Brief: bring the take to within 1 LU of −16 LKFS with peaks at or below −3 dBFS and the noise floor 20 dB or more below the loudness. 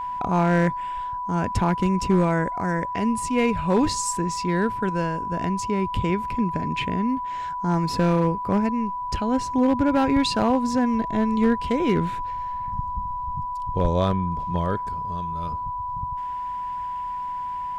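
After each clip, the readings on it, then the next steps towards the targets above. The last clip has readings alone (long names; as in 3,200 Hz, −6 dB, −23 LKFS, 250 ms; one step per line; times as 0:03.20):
share of clipped samples 0.4%; peaks flattened at −12.5 dBFS; interfering tone 990 Hz; level of the tone −27 dBFS; integrated loudness −24.0 LKFS; sample peak −12.5 dBFS; target loudness −16.0 LKFS
→ clipped peaks rebuilt −12.5 dBFS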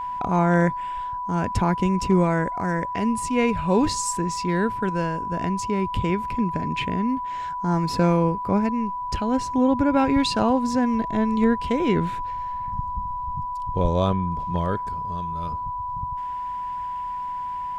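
share of clipped samples 0.0%; interfering tone 990 Hz; level of the tone −27 dBFS
→ notch filter 990 Hz, Q 30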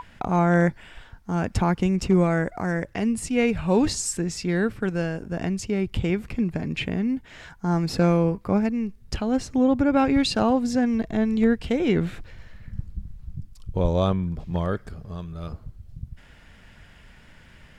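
interfering tone none found; integrated loudness −24.0 LKFS; sample peak −7.0 dBFS; target loudness −16.0 LKFS
→ level +8 dB
brickwall limiter −3 dBFS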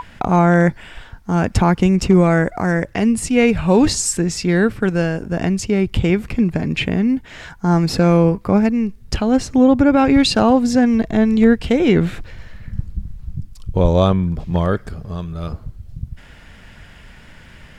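integrated loudness −16.5 LKFS; sample peak −3.0 dBFS; background noise floor −43 dBFS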